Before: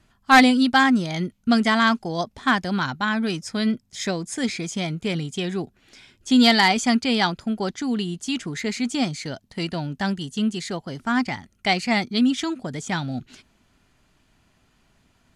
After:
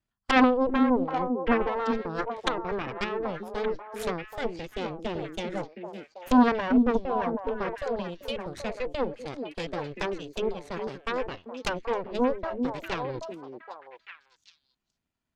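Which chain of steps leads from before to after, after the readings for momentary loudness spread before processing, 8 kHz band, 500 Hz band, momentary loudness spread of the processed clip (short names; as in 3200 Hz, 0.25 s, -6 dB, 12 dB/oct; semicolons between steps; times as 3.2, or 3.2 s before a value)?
13 LU, under -15 dB, +1.5 dB, 15 LU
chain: treble ducked by the level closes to 630 Hz, closed at -18 dBFS; added harmonics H 3 -10 dB, 6 -14 dB, 7 -36 dB, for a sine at -8 dBFS; delay with a stepping band-pass 0.39 s, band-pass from 290 Hz, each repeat 1.4 oct, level -1.5 dB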